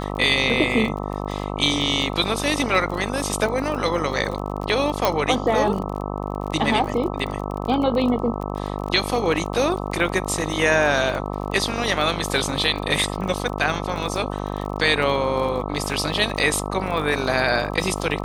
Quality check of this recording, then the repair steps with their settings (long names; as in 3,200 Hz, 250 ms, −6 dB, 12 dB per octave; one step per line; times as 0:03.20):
mains buzz 50 Hz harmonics 26 −28 dBFS
surface crackle 33 per second −28 dBFS
0:05.05: click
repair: click removal
hum removal 50 Hz, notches 26